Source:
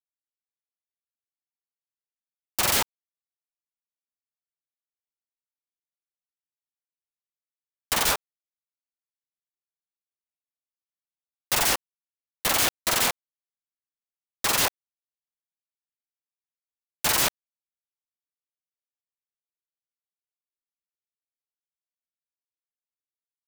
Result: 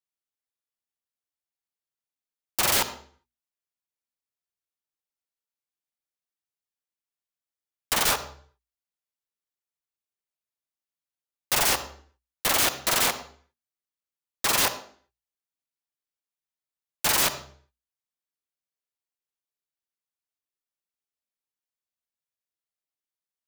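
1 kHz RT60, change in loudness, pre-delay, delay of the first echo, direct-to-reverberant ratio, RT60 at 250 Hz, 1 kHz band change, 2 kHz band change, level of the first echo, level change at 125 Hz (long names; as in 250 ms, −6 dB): 0.50 s, 0.0 dB, 37 ms, no echo audible, 11.0 dB, 0.65 s, +0.5 dB, 0.0 dB, no echo audible, −0.5 dB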